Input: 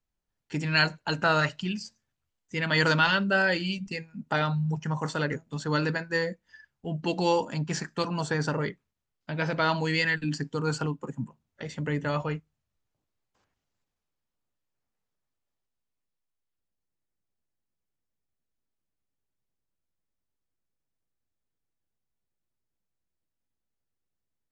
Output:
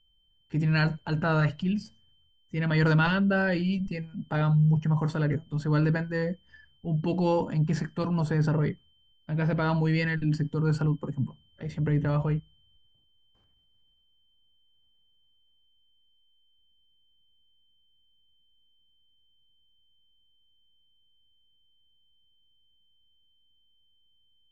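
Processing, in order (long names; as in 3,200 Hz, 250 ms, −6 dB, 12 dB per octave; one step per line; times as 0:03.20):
steady tone 3,100 Hz −60 dBFS
RIAA equalisation playback
transient designer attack −3 dB, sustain +4 dB
level −3.5 dB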